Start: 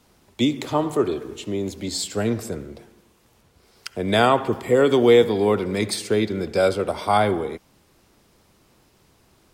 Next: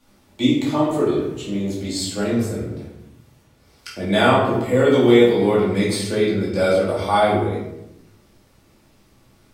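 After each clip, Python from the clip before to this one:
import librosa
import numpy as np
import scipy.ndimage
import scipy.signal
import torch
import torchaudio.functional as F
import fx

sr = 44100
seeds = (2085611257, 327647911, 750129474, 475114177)

y = fx.room_shoebox(x, sr, seeds[0], volume_m3=250.0, walls='mixed', distance_m=2.4)
y = y * librosa.db_to_amplitude(-6.0)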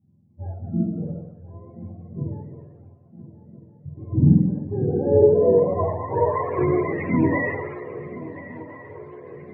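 y = fx.octave_mirror(x, sr, pivot_hz=450.0)
y = fx.filter_sweep_lowpass(y, sr, from_hz=200.0, to_hz=1900.0, start_s=4.6, end_s=6.78, q=2.3)
y = fx.echo_swing(y, sr, ms=1366, ratio=3, feedback_pct=51, wet_db=-16.5)
y = y * librosa.db_to_amplitude(-3.0)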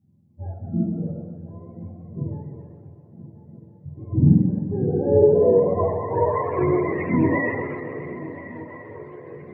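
y = fx.echo_warbled(x, sr, ms=129, feedback_pct=78, rate_hz=2.8, cents=68, wet_db=-14.0)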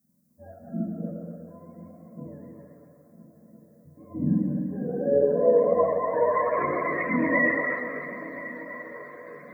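y = fx.tilt_eq(x, sr, slope=4.0)
y = fx.fixed_phaser(y, sr, hz=570.0, stages=8)
y = y + 10.0 ** (-6.0 / 20.0) * np.pad(y, (int(240 * sr / 1000.0), 0))[:len(y)]
y = y * librosa.db_to_amplitude(4.0)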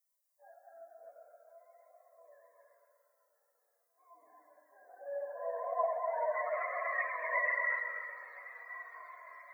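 y = scipy.signal.sosfilt(scipy.signal.ellip(4, 1.0, 70, 670.0, 'highpass', fs=sr, output='sos'), x)
y = fx.comb_cascade(y, sr, direction='falling', hz=0.21)
y = y * librosa.db_to_amplitude(-1.0)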